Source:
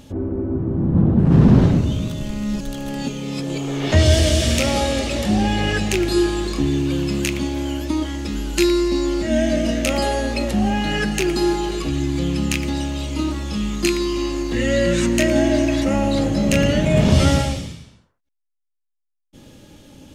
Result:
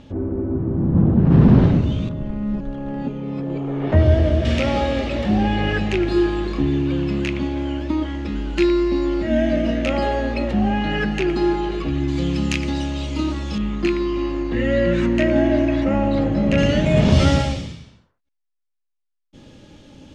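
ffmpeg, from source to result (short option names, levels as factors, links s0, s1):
-af "asetnsamples=n=441:p=0,asendcmd='2.09 lowpass f 1300;4.45 lowpass f 2700;12.08 lowpass f 5400;13.58 lowpass f 2300;16.58 lowpass f 5400',lowpass=3500"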